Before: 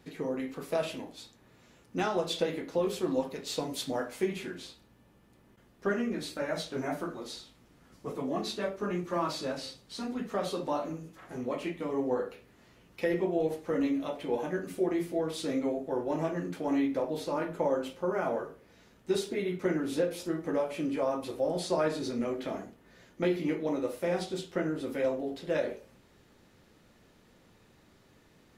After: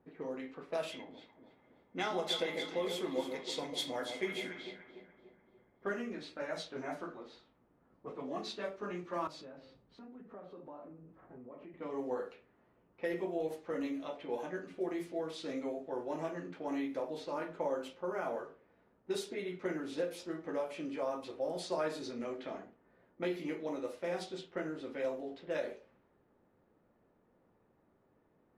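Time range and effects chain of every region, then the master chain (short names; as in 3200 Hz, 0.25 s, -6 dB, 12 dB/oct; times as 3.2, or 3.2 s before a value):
0.92–5.87 small resonant body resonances 2100/3300 Hz, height 15 dB, ringing for 25 ms + echo with dull and thin repeats by turns 0.146 s, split 890 Hz, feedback 71%, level -6 dB
9.27–11.74 low shelf 430 Hz +8 dB + compressor, threshold -40 dBFS + three-band expander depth 40%
whole clip: low shelf 220 Hz -10 dB; low-pass opened by the level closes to 930 Hz, open at -28.5 dBFS; gain -5 dB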